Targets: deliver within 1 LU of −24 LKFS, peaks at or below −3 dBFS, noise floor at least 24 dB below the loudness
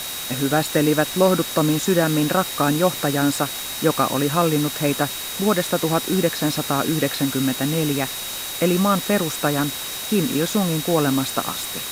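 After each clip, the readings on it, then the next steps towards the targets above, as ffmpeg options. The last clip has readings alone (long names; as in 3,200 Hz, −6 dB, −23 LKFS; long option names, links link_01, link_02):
interfering tone 3,800 Hz; level of the tone −33 dBFS; background noise floor −30 dBFS; target noise floor −45 dBFS; integrated loudness −20.5 LKFS; sample peak −3.5 dBFS; target loudness −24.0 LKFS
→ -af "bandreject=frequency=3800:width=30"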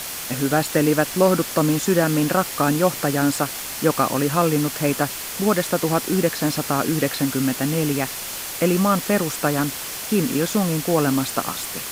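interfering tone none found; background noise floor −31 dBFS; target noise floor −45 dBFS
→ -af "afftdn=noise_reduction=14:noise_floor=-31"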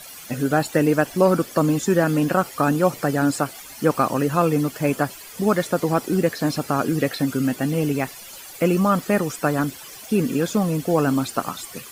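background noise floor −40 dBFS; target noise floor −46 dBFS
→ -af "afftdn=noise_reduction=6:noise_floor=-40"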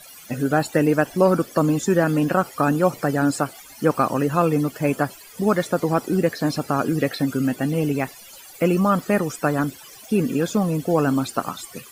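background noise floor −44 dBFS; target noise floor −46 dBFS
→ -af "afftdn=noise_reduction=6:noise_floor=-44"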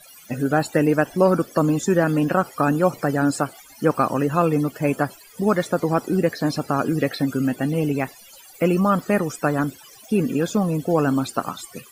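background noise floor −47 dBFS; integrated loudness −21.5 LKFS; sample peak −4.0 dBFS; target loudness −24.0 LKFS
→ -af "volume=-2.5dB"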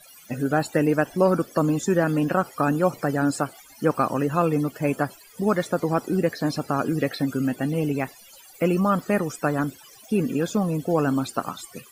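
integrated loudness −24.0 LKFS; sample peak −6.5 dBFS; background noise floor −50 dBFS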